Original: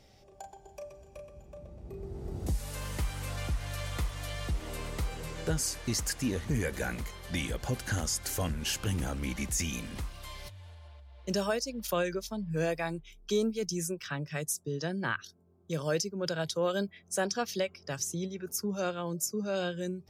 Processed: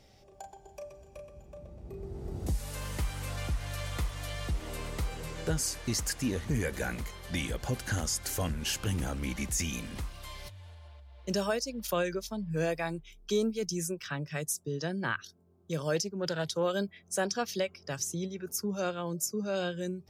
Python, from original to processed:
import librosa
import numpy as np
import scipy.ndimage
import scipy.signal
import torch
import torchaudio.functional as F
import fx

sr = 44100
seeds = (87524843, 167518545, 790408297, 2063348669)

y = fx.doppler_dist(x, sr, depth_ms=0.11, at=(15.96, 16.63))